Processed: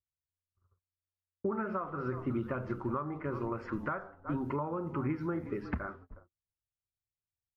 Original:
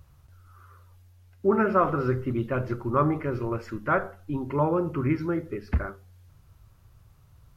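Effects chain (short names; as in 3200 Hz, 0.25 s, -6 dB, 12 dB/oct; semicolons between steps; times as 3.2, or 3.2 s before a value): bell 1100 Hz +10.5 dB 2 oct; on a send: frequency-shifting echo 0.364 s, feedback 30%, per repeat -37 Hz, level -19.5 dB; on the sum: gate -42 dBFS, range -41 dB; compressor 8:1, threshold -29 dBFS, peak gain reduction 20 dB; dynamic EQ 200 Hz, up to +8 dB, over -47 dBFS, Q 0.82; low-pass opened by the level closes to 340 Hz, open at -26 dBFS; gain -6 dB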